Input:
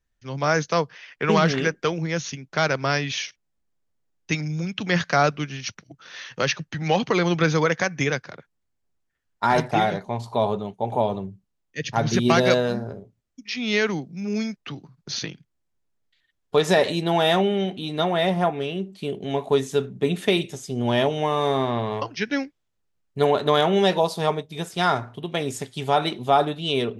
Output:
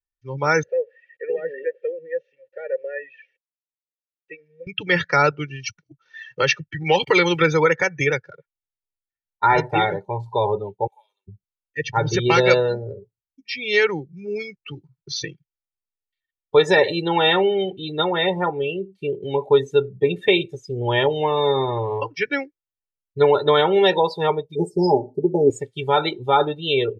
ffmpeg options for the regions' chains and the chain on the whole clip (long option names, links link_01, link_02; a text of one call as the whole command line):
ffmpeg -i in.wav -filter_complex "[0:a]asettb=1/sr,asplit=3[link_01][link_02][link_03];[link_01]atrim=end=0.634[link_04];[link_02]atrim=start=0.63:end=4.67,asetpts=PTS-STARTPTS,afade=type=in:duration=0.004:curve=qsin,afade=type=out:start_time=4.036:duration=0.004:curve=qsin,aeval=exprs='val(0)+0.5*0.0237*sgn(val(0))':channel_layout=same,acrossover=split=3200[link_05][link_06];[link_06]acompressor=threshold=-44dB:ratio=4:attack=1:release=60[link_07];[link_05][link_07]amix=inputs=2:normalize=0,asplit=3[link_08][link_09][link_10];[link_08]bandpass=frequency=530:width_type=q:width=8,volume=0dB[link_11];[link_09]bandpass=frequency=1840:width_type=q:width=8,volume=-6dB[link_12];[link_10]bandpass=frequency=2480:width_type=q:width=8,volume=-9dB[link_13];[link_11][link_12][link_13]amix=inputs=3:normalize=0[link_14];[link_03]atrim=start=4.666[link_15];[link_04][link_14]acrossfade=duration=0.004:curve1=hsin:curve2=qsin[link_16];[link_16][link_15]acrossfade=duration=0.004:curve1=qsin:curve2=hsin,asettb=1/sr,asplit=3[link_17][link_18][link_19];[link_17]atrim=end=6.834[link_20];[link_18]atrim=start=6.83:end=7.42,asetpts=PTS-STARTPTS,afade=type=in:duration=0.004:curve=qsin,afade=type=out:start_time=0.586:duration=0.004:curve=qsin,aeval=exprs='val(0)*gte(abs(val(0)),0.01)':channel_layout=same,adynamicequalizer=threshold=0.0141:dfrequency=1600:dqfactor=0.7:tfrequency=1600:tqfactor=0.7:attack=5:release=100:ratio=0.375:range=2.5:mode=boostabove:tftype=highshelf[link_21];[link_19]atrim=start=7.416[link_22];[link_20][link_21]acrossfade=duration=0.004:curve1=hsin:curve2=qsin[link_23];[link_23][link_22]acrossfade=duration=0.004:curve1=qsin:curve2=hsin,asettb=1/sr,asplit=3[link_24][link_25][link_26];[link_24]atrim=end=10.874[link_27];[link_25]atrim=start=10.87:end=11.28,asetpts=PTS-STARTPTS,afade=type=in:duration=0.004:curve=qsin,afade=type=out:start_time=0.406:duration=0.004:curve=qsin,highpass=frequency=1500:poles=1,aderivative[link_28];[link_26]atrim=start=11.276[link_29];[link_27][link_28]acrossfade=duration=0.004:curve1=hsin:curve2=qsin[link_30];[link_30][link_29]acrossfade=duration=0.004:curve1=qsin:curve2=hsin,asettb=1/sr,asplit=3[link_31][link_32][link_33];[link_31]atrim=end=24.554[link_34];[link_32]atrim=start=24.55:end=25.5,asetpts=PTS-STARTPTS,afade=type=in:duration=0.004:curve=qsin,afade=type=out:start_time=0.946:duration=0.004:curve=qsin,asuperstop=centerf=2000:order=20:qfactor=0.55,equalizer=frequency=290:width_type=o:width=0.84:gain=14.5,aecho=1:1:4.9:0.8,atrim=end_sample=41895[link_35];[link_33]atrim=start=25.496[link_36];[link_34][link_35]acrossfade=duration=0.004:curve1=hsin:curve2=qsin[link_37];[link_37][link_36]acrossfade=duration=0.004:curve1=qsin:curve2=hsin,afftdn=noise_reduction=24:noise_floor=-31,equalizer=frequency=2300:width_type=o:width=0.94:gain=4,aecho=1:1:2.2:0.87" out.wav